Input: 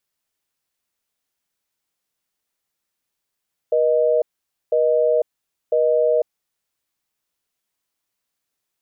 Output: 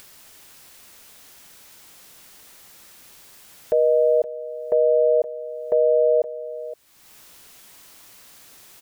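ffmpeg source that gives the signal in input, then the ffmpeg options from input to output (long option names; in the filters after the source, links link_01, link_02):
-f lavfi -i "aevalsrc='0.141*(sin(2*PI*480*t)+sin(2*PI*620*t))*clip(min(mod(t,1),0.5-mod(t,1))/0.005,0,1)':duration=3:sample_rate=44100"
-af "acompressor=mode=upward:threshold=-23dB:ratio=2.5,aecho=1:1:519:0.178"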